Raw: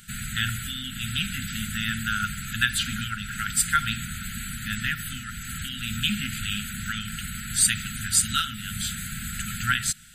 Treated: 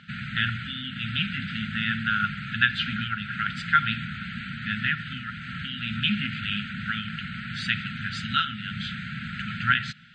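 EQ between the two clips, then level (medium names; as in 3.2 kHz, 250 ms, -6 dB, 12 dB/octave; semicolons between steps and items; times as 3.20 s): Chebyshev band-pass 150–3200 Hz, order 2; dynamic bell 260 Hz, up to -3 dB, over -48 dBFS, Q 1.4; distance through air 190 m; +4.5 dB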